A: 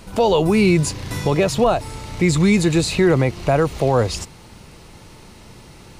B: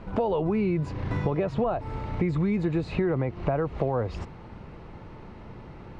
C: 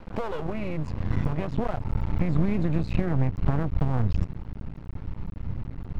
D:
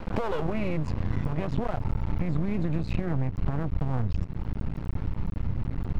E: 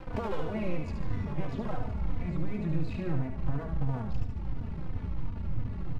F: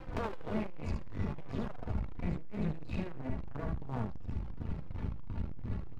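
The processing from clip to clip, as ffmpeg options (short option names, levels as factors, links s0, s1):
-af "lowpass=1600,acompressor=threshold=0.0708:ratio=6"
-af "asubboost=boost=8.5:cutoff=150,aeval=exprs='max(val(0),0)':c=same"
-af "acompressor=threshold=0.0316:ratio=6,volume=2.37"
-filter_complex "[0:a]aecho=1:1:73|146|219|292|365|438|511:0.562|0.298|0.158|0.0837|0.0444|0.0235|0.0125,asplit=2[s0][s1];[s1]adelay=3.3,afreqshift=-2.9[s2];[s0][s2]amix=inputs=2:normalize=1,volume=0.708"
-af "aeval=exprs='(tanh(31.6*val(0)+0.75)-tanh(0.75))/31.6':c=same,volume=1.5"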